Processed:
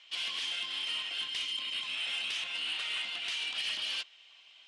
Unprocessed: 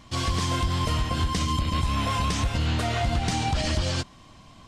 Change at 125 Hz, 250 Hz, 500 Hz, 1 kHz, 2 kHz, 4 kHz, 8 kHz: below −40 dB, −32.0 dB, −24.5 dB, −21.5 dB, −2.5 dB, +0.5 dB, −12.0 dB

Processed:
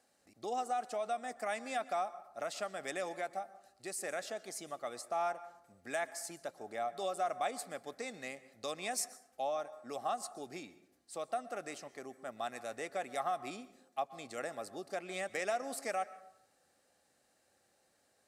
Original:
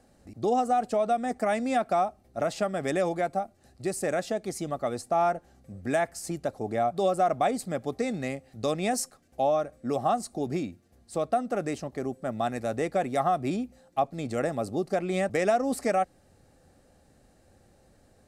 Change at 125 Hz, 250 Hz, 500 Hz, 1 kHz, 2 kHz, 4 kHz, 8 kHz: −23.0, −18.5, −12.0, −10.0, −6.0, −5.0, −4.5 decibels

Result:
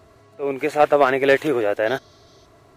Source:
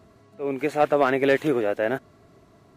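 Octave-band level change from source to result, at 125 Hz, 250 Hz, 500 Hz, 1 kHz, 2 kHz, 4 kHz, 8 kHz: 0.0 dB, +0.5 dB, +4.0 dB, +5.0 dB, +5.0 dB, +5.5 dB, can't be measured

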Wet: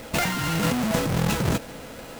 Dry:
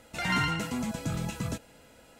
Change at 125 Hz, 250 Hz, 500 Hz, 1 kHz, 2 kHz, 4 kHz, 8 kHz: +8.0, +8.0, +12.5, +5.5, +4.5, +6.5, +9.5 decibels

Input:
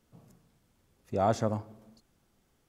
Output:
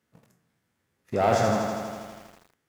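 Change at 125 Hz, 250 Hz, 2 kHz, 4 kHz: +3.0, +5.5, +13.5, +10.5 decibels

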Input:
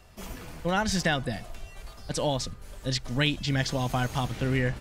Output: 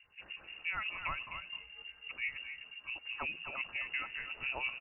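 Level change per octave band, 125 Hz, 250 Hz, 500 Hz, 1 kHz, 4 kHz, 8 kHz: −31.0 dB, −30.0 dB, −23.0 dB, −12.0 dB, −11.5 dB, below −40 dB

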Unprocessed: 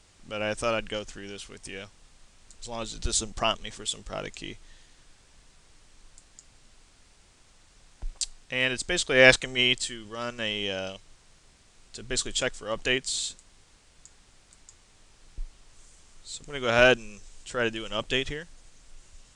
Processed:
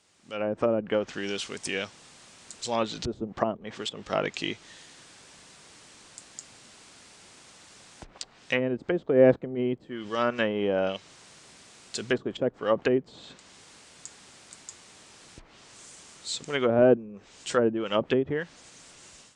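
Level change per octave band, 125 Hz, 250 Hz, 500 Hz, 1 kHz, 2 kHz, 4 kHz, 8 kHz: +1.5, +6.5, +3.5, +1.0, −8.0, −8.0, −8.0 decibels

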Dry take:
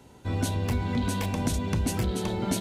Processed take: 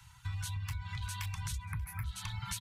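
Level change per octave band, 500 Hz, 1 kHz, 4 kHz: below −40 dB, −12.0 dB, −7.0 dB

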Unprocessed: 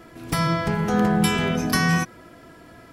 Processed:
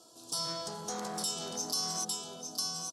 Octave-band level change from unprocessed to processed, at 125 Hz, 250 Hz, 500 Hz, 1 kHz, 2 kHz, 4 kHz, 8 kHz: −25.5, −23.0, −15.0, −14.0, −25.5, −3.5, +0.5 decibels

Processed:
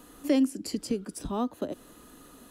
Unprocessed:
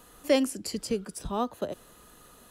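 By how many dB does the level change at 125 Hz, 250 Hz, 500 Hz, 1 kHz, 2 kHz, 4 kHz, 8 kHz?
0.0, +3.5, −4.5, −3.5, −6.0, −4.5, −3.0 decibels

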